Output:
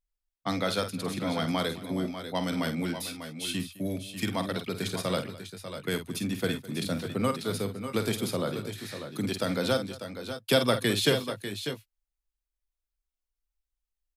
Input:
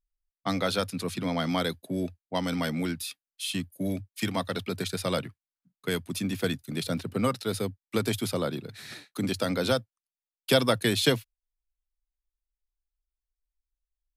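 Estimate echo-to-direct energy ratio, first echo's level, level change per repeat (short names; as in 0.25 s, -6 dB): -6.0 dB, -9.5 dB, no steady repeat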